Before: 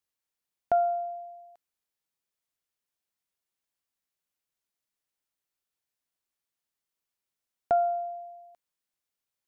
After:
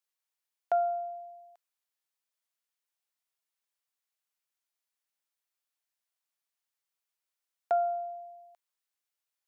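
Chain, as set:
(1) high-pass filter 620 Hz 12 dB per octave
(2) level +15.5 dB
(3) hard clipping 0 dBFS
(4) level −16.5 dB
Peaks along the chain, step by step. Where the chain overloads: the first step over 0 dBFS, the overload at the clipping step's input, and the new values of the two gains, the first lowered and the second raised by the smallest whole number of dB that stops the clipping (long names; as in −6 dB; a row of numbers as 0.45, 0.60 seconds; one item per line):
−18.0, −2.5, −2.5, −19.0 dBFS
no step passes full scale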